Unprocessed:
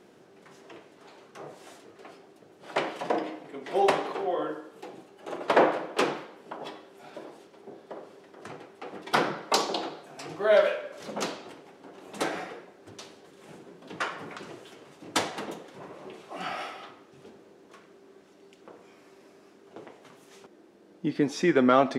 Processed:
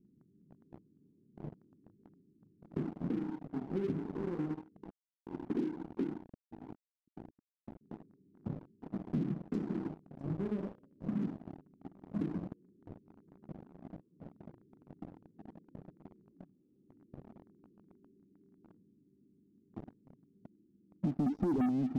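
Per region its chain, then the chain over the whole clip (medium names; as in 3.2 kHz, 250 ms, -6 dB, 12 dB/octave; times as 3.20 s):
4.90–7.81 s: send-on-delta sampling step -36 dBFS + band-pass filter 320 Hz, Q 2.1
12.53–18.70 s: peaking EQ 400 Hz +5.5 dB 1.3 oct + compression 10:1, threshold -44 dBFS
21.26–21.66 s: spectral contrast enhancement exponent 2 + waveshaping leveller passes 3
whole clip: inverse Chebyshev low-pass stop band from 640 Hz, stop band 50 dB; waveshaping leveller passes 3; compression 4:1, threshold -36 dBFS; trim +3.5 dB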